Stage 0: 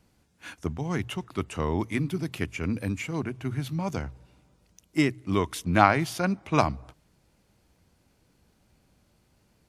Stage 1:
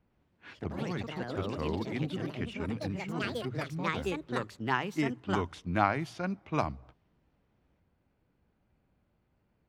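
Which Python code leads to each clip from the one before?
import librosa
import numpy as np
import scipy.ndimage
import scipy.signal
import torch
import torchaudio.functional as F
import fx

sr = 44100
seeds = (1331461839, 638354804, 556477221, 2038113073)

y = fx.high_shelf(x, sr, hz=5200.0, db=-9.0)
y = fx.env_lowpass(y, sr, base_hz=2600.0, full_db=-19.5)
y = fx.echo_pitch(y, sr, ms=107, semitones=4, count=3, db_per_echo=-3.0)
y = F.gain(torch.from_numpy(y), -7.5).numpy()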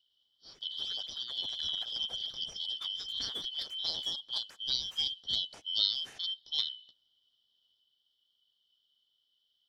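y = fx.band_shuffle(x, sr, order='3412')
y = F.gain(torch.from_numpy(y), -3.0).numpy()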